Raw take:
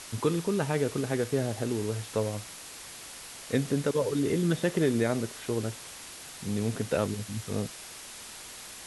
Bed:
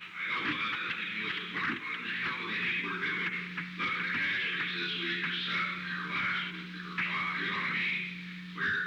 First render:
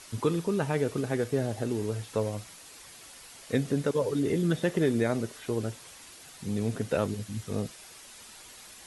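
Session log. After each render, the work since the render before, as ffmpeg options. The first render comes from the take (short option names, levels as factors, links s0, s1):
-af "afftdn=nr=7:nf=-45"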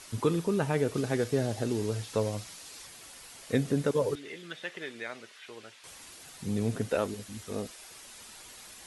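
-filter_complex "[0:a]asettb=1/sr,asplit=3[s0][s1][s2];[s0]atrim=end=0.944[s3];[s1]atrim=start=0.94:end=2.87,asetpts=PTS-STARTPTS,afade=t=in:d=0.004:c=qsin,afade=t=out:st=1.926:d=0.004:c=qsin,equalizer=f=4900:t=o:w=1.4:g=4.5[s4];[s2]atrim=start=2.866[s5];[s3][s4]acrossfade=d=0.004:c1=hsin:c2=qsin[s6];[s6][s5]acrossfade=d=0.004:c1=qsin:c2=hsin,asettb=1/sr,asplit=3[s7][s8][s9];[s7]atrim=end=4.154[s10];[s8]atrim=start=4.15:end=5.84,asetpts=PTS-STARTPTS,afade=t=in:d=0.004:c=qsin,afade=t=out:st=1.686:d=0.004:c=qsin,bandpass=f=2500:t=q:w=1.1[s11];[s9]atrim=start=5.836[s12];[s10][s11]acrossfade=d=0.004:c1=hsin:c2=qsin[s13];[s13][s12]acrossfade=d=0.004:c1=qsin:c2=hsin,asettb=1/sr,asplit=3[s14][s15][s16];[s14]atrim=end=6.894[s17];[s15]atrim=start=6.89:end=7.91,asetpts=PTS-STARTPTS,afade=t=in:d=0.004:c=qsin,afade=t=out:st=1.016:d=0.004:c=qsin,equalizer=f=130:w=1.3:g=-13[s18];[s16]atrim=start=7.906[s19];[s17][s18]acrossfade=d=0.004:c1=hsin:c2=qsin[s20];[s20][s19]acrossfade=d=0.004:c1=qsin:c2=hsin"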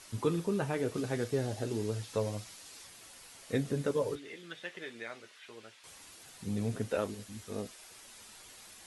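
-af "flanger=delay=9:depth=2:regen=-53:speed=1.6:shape=sinusoidal"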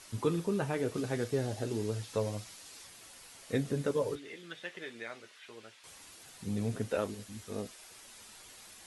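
-af anull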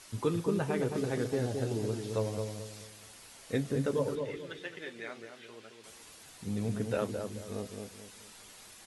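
-filter_complex "[0:a]asplit=2[s0][s1];[s1]adelay=217,lowpass=f=910:p=1,volume=0.631,asplit=2[s2][s3];[s3]adelay=217,lowpass=f=910:p=1,volume=0.38,asplit=2[s4][s5];[s5]adelay=217,lowpass=f=910:p=1,volume=0.38,asplit=2[s6][s7];[s7]adelay=217,lowpass=f=910:p=1,volume=0.38,asplit=2[s8][s9];[s9]adelay=217,lowpass=f=910:p=1,volume=0.38[s10];[s0][s2][s4][s6][s8][s10]amix=inputs=6:normalize=0"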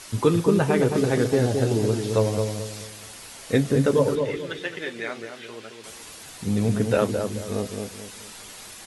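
-af "volume=3.55"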